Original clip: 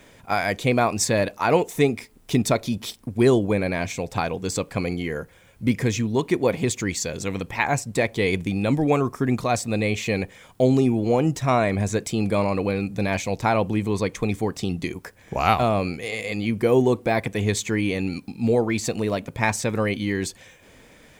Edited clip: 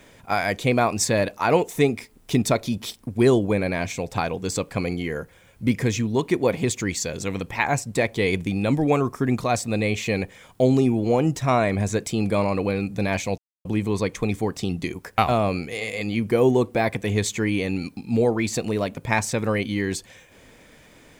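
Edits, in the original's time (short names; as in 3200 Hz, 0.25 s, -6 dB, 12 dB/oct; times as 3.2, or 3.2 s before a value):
13.38–13.65 mute
15.18–15.49 cut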